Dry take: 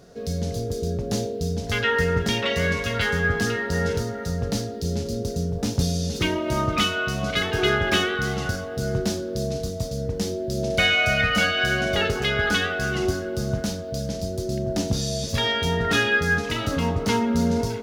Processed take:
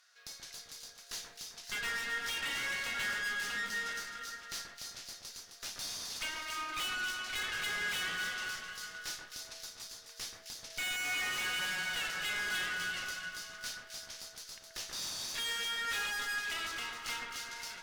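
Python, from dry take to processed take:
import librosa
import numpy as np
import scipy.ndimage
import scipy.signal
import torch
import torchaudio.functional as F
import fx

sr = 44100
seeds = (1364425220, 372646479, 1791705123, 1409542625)

p1 = scipy.signal.sosfilt(scipy.signal.butter(4, 1400.0, 'highpass', fs=sr, output='sos'), x)
p2 = fx.high_shelf(p1, sr, hz=5300.0, db=-5.5)
p3 = fx.tube_stage(p2, sr, drive_db=35.0, bias=0.75)
y = p3 + fx.echo_alternate(p3, sr, ms=131, hz=2000.0, feedback_pct=65, wet_db=-3.5, dry=0)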